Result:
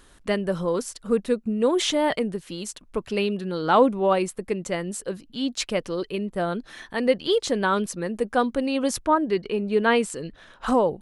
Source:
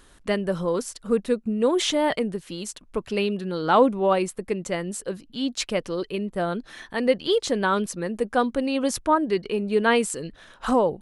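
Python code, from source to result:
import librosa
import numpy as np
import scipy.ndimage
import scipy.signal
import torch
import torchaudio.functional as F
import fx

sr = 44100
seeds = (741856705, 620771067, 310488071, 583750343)

y = fx.high_shelf(x, sr, hz=7600.0, db=-9.0, at=(9.05, 10.68))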